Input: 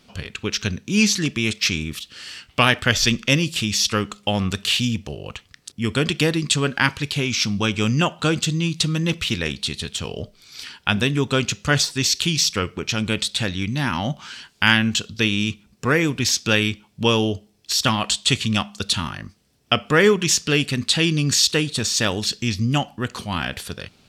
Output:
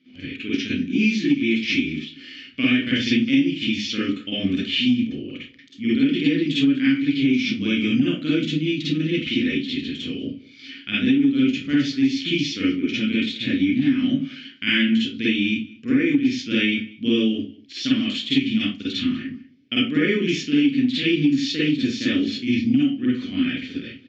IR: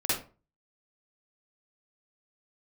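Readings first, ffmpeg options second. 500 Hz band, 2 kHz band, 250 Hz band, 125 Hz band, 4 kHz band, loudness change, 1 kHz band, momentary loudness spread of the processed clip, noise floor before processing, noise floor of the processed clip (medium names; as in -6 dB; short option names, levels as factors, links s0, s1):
-5.0 dB, -3.5 dB, +5.5 dB, -7.5 dB, -4.5 dB, -1.0 dB, under -15 dB, 10 LU, -58 dBFS, -47 dBFS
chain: -filter_complex "[0:a]aresample=16000,aresample=44100,asplit=3[s0][s1][s2];[s0]bandpass=f=270:t=q:w=8,volume=1[s3];[s1]bandpass=f=2290:t=q:w=8,volume=0.501[s4];[s2]bandpass=f=3010:t=q:w=8,volume=0.355[s5];[s3][s4][s5]amix=inputs=3:normalize=0,highshelf=f=3000:g=-6.5,acontrast=37,asplit=2[s6][s7];[s7]adelay=32,volume=0.251[s8];[s6][s8]amix=inputs=2:normalize=0[s9];[1:a]atrim=start_sample=2205,afade=t=out:st=0.2:d=0.01,atrim=end_sample=9261[s10];[s9][s10]afir=irnorm=-1:irlink=0,acompressor=threshold=0.178:ratio=6,asplit=2[s11][s12];[s12]adelay=192.4,volume=0.0891,highshelf=f=4000:g=-4.33[s13];[s11][s13]amix=inputs=2:normalize=0"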